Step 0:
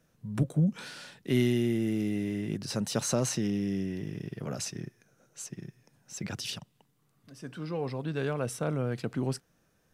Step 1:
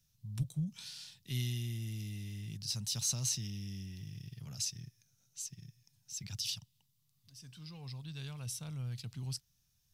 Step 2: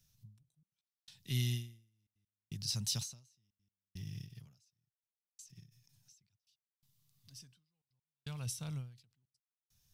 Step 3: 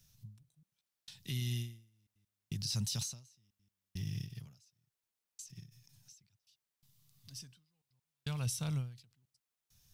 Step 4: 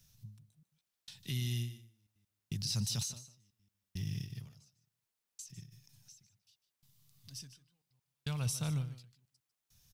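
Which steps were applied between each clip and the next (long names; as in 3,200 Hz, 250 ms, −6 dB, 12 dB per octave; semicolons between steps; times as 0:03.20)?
drawn EQ curve 110 Hz 0 dB, 290 Hz −22 dB, 540 Hz −26 dB, 890 Hz −15 dB, 1,500 Hz −18 dB, 3,600 Hz +1 dB, 5,200 Hz +4 dB, 9,000 Hz −1 dB, 13,000 Hz +4 dB; level −2 dB
gate pattern "xxxxxxx.x...xxxx" 167 BPM −60 dB; every ending faded ahead of time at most 120 dB per second; level +2 dB
brickwall limiter −33 dBFS, peak gain reduction 11 dB; level +5.5 dB
single-tap delay 150 ms −14.5 dB; level +1 dB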